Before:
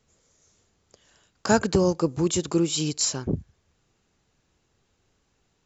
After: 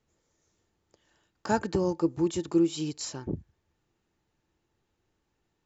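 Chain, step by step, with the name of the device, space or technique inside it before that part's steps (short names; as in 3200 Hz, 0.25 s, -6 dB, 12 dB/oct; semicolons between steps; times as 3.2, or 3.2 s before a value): inside a helmet (high shelf 5800 Hz -9 dB; small resonant body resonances 330/880/1800 Hz, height 9 dB, ringing for 90 ms); gain -7.5 dB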